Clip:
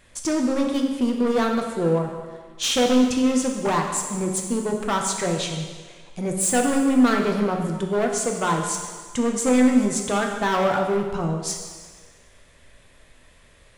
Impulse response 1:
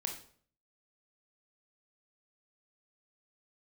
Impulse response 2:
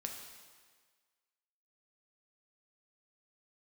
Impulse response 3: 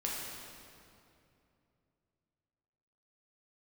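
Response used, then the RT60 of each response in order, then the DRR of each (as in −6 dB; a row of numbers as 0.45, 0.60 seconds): 2; 0.55, 1.6, 2.7 seconds; 2.5, 1.5, −4.5 decibels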